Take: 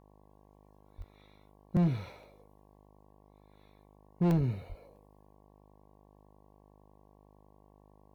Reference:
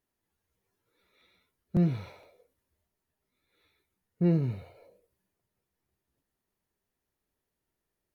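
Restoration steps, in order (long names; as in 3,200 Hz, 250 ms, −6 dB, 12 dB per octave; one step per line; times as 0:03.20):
clipped peaks rebuilt −22 dBFS
hum removal 50.9 Hz, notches 22
high-pass at the plosives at 0:00.97/0:04.37/0:04.68
repair the gap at 0:01.02/0:04.31/0:04.96, 1.2 ms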